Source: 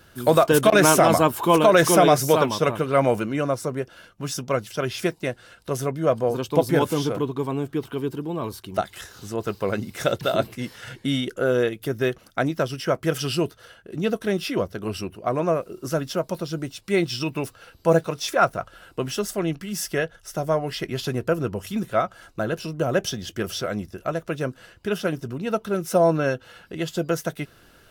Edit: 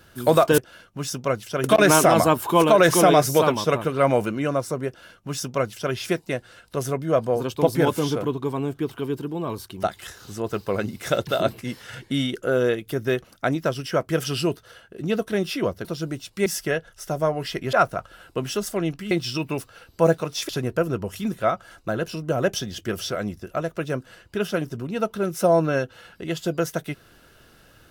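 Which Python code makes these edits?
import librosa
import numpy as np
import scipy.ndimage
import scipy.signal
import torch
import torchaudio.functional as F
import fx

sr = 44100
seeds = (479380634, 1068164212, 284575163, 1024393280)

y = fx.edit(x, sr, fx.duplicate(start_s=3.82, length_s=1.06, to_s=0.58),
    fx.cut(start_s=14.79, length_s=1.57),
    fx.swap(start_s=16.97, length_s=1.38, other_s=19.73, other_length_s=1.27), tone=tone)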